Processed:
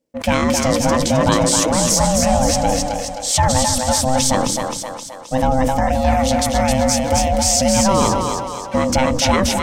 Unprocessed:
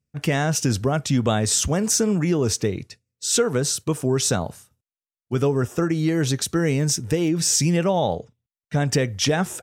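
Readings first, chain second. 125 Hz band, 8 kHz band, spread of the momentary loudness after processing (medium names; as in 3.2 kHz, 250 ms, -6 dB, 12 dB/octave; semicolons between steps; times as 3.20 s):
+1.0 dB, +5.5 dB, 8 LU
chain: ring modulator 390 Hz; two-band feedback delay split 370 Hz, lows 149 ms, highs 263 ms, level -4 dB; decay stretcher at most 33 dB/s; trim +6 dB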